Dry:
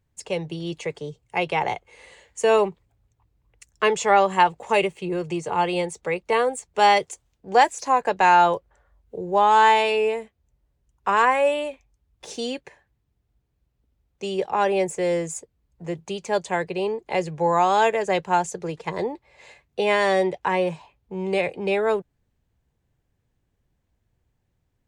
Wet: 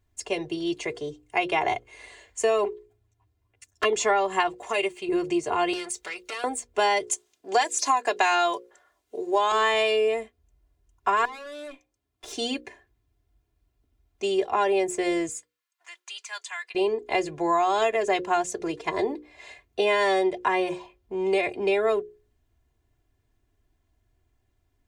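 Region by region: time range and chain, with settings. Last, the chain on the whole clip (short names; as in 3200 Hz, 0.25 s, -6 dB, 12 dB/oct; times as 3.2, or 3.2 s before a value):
2.64–3.93 envelope flanger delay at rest 10.8 ms, full sweep at -17.5 dBFS + notch 1200 Hz, Q 14
4.55–5.09 low shelf 480 Hz -7.5 dB + compressor 2.5:1, threshold -23 dBFS
5.73–6.44 tilt shelf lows -9 dB, about 1200 Hz + compressor, threshold -29 dBFS + core saturation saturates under 2400 Hz
7.11–9.52 HPF 270 Hz + bell 7300 Hz +9.5 dB 2.8 oct
11.25–12.33 HPF 150 Hz + compressor, threshold -29 dBFS + tube stage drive 36 dB, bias 0.55
15.29–16.75 HPF 1200 Hz 24 dB/oct + compressor 1.5:1, threshold -41 dBFS
whole clip: notches 60/120/180/240/300/360/420/480/540 Hz; comb 2.9 ms, depth 76%; compressor 6:1, threshold -19 dBFS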